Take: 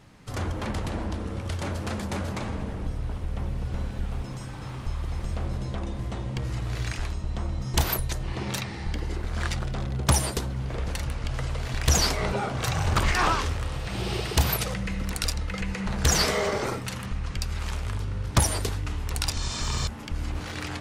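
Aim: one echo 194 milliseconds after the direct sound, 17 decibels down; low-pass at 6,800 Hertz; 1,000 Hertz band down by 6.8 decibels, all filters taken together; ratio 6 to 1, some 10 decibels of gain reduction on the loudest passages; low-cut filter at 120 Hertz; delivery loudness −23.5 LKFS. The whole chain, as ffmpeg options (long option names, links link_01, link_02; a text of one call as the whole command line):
ffmpeg -i in.wav -af "highpass=120,lowpass=6800,equalizer=frequency=1000:width_type=o:gain=-9,acompressor=threshold=-31dB:ratio=6,aecho=1:1:194:0.141,volume=13dB" out.wav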